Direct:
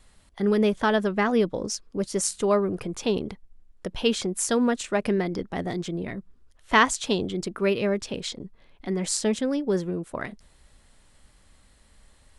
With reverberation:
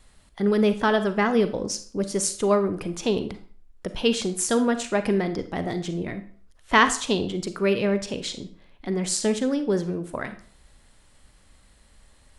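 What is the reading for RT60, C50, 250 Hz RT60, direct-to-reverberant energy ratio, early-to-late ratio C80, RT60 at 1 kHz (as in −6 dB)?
0.45 s, 12.0 dB, 0.45 s, 10.0 dB, 16.5 dB, 0.45 s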